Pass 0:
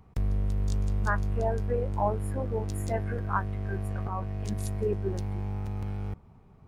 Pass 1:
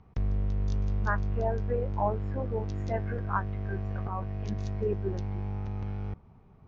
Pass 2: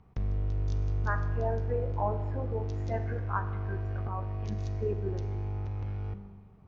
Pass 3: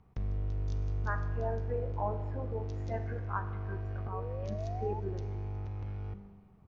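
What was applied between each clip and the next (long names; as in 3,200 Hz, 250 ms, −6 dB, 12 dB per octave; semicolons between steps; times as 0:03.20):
elliptic low-pass filter 6,200 Hz, stop band 40 dB; high-shelf EQ 4,600 Hz −8 dB
four-comb reverb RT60 1.3 s, combs from 31 ms, DRR 9.5 dB; level −2.5 dB
sound drawn into the spectrogram rise, 0:04.12–0:05.00, 430–890 Hz −39 dBFS; single-tap delay 364 ms −23 dB; level −3.5 dB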